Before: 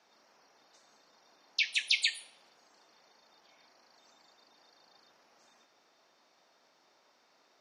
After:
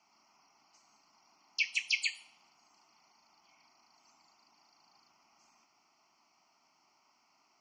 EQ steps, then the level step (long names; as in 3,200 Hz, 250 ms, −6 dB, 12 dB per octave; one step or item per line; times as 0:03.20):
phaser with its sweep stopped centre 2,500 Hz, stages 8
0.0 dB